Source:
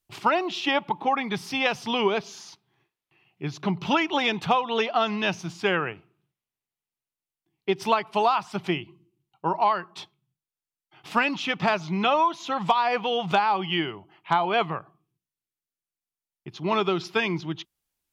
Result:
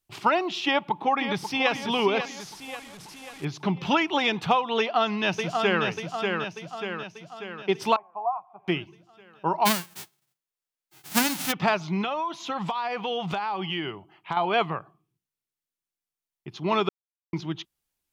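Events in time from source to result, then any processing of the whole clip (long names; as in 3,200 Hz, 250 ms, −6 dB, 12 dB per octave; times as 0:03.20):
0:00.65–0:01.71: delay throw 540 ms, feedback 50%, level −8.5 dB
0:02.40–0:03.45: linear delta modulator 64 kbit/s, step −39 dBFS
0:04.79–0:05.85: delay throw 590 ms, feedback 55%, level −4 dB
0:07.96–0:08.68: formant resonators in series a
0:09.65–0:11.51: spectral envelope flattened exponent 0.1
0:12.01–0:14.37: downward compressor, threshold −25 dBFS
0:16.89–0:17.33: silence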